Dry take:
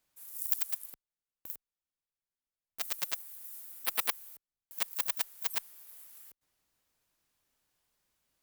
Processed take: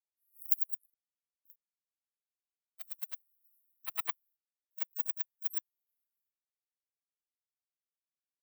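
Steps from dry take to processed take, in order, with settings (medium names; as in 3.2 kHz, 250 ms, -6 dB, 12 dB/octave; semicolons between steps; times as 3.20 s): spectral contrast expander 2.5:1; trim +1.5 dB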